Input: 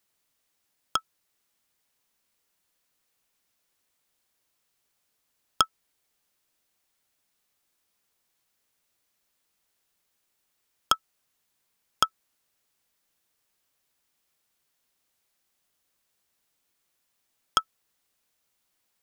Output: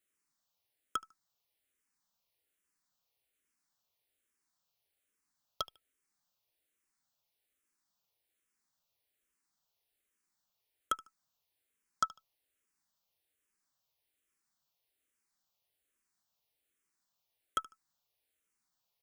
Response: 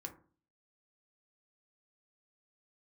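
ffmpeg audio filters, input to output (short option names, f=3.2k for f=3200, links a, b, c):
-filter_complex "[0:a]aecho=1:1:75|150:0.0668|0.0167,volume=13.5dB,asoftclip=hard,volume=-13.5dB,asplit=2[a][b];[b]afreqshift=-1.2[c];[a][c]amix=inputs=2:normalize=1,volume=-5.5dB"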